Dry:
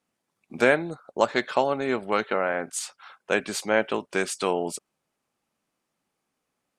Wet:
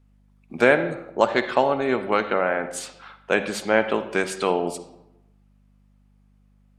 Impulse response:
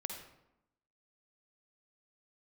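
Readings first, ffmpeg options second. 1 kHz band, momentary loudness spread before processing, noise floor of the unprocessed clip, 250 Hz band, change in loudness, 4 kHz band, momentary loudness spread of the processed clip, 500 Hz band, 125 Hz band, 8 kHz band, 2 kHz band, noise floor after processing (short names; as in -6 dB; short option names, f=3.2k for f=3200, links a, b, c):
+3.5 dB, 11 LU, -81 dBFS, +3.5 dB, +3.0 dB, +1.0 dB, 12 LU, +3.5 dB, +3.5 dB, -2.5 dB, +3.0 dB, -58 dBFS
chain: -filter_complex "[0:a]aeval=exprs='val(0)+0.001*(sin(2*PI*50*n/s)+sin(2*PI*2*50*n/s)/2+sin(2*PI*3*50*n/s)/3+sin(2*PI*4*50*n/s)/4+sin(2*PI*5*50*n/s)/5)':c=same,asplit=2[a][b];[1:a]atrim=start_sample=2205,lowpass=4.4k[c];[b][c]afir=irnorm=-1:irlink=0,volume=-1dB[d];[a][d]amix=inputs=2:normalize=0,volume=-1.5dB"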